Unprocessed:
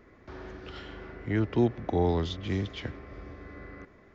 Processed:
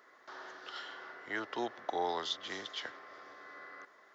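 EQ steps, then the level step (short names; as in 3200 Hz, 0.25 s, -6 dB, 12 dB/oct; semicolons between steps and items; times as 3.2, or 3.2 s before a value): HPF 980 Hz 12 dB/oct; bell 2400 Hz -12 dB 0.41 oct; +4.5 dB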